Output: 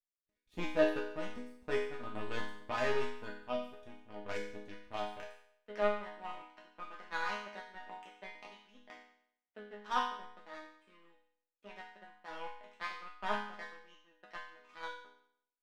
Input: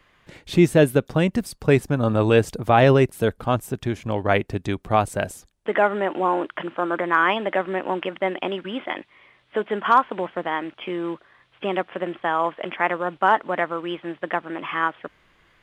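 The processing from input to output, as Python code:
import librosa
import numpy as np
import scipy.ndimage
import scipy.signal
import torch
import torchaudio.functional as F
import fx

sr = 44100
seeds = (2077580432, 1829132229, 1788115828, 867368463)

y = fx.low_shelf_res(x, sr, hz=100.0, db=9.5, q=1.5)
y = fx.power_curve(y, sr, exponent=2.0)
y = fx.resonator_bank(y, sr, root=56, chord='minor', decay_s=0.66)
y = F.gain(torch.from_numpy(y), 9.5).numpy()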